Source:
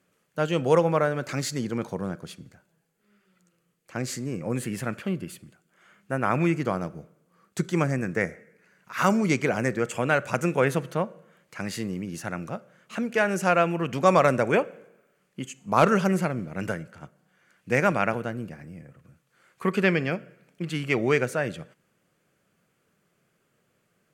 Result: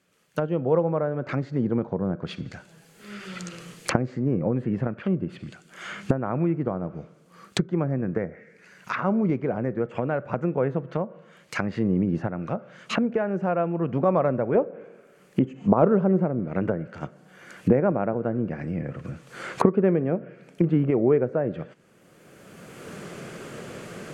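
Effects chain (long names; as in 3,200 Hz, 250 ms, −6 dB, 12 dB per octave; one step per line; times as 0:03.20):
camcorder AGC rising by 19 dB per second
treble cut that deepens with the level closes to 790 Hz, closed at −22 dBFS
parametric band 4,100 Hz +5 dB 1.9 octaves, from 0:14.55 380 Hz
level −1 dB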